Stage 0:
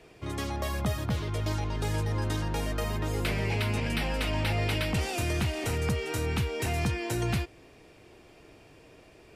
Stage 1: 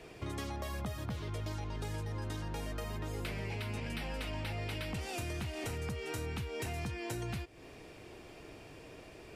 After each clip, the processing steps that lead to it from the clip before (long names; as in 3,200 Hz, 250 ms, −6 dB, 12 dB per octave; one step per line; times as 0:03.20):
downward compressor 5 to 1, threshold −40 dBFS, peak gain reduction 14 dB
level +2.5 dB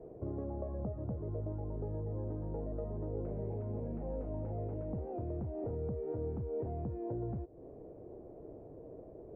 transistor ladder low-pass 670 Hz, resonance 40%
level +8 dB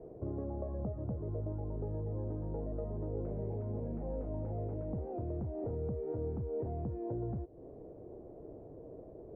high-frequency loss of the air 260 metres
level +1 dB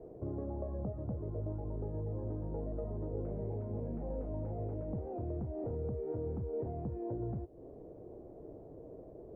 flanger 1.7 Hz, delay 2.4 ms, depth 4.7 ms, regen −82%
level +4 dB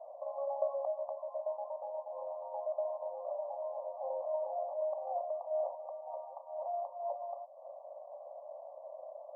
linear-phase brick-wall band-pass 530–1,200 Hz
level +11.5 dB